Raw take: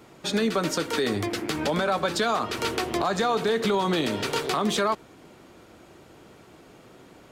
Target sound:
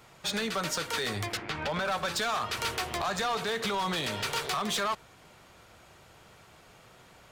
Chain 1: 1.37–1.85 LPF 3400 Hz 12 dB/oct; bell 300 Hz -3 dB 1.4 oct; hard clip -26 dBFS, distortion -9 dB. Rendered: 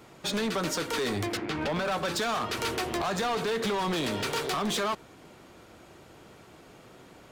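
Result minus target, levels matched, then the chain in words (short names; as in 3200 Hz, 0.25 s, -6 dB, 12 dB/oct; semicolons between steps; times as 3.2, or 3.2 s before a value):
250 Hz band +4.5 dB
1.37–1.85 LPF 3400 Hz 12 dB/oct; bell 300 Hz -14.5 dB 1.4 oct; hard clip -26 dBFS, distortion -12 dB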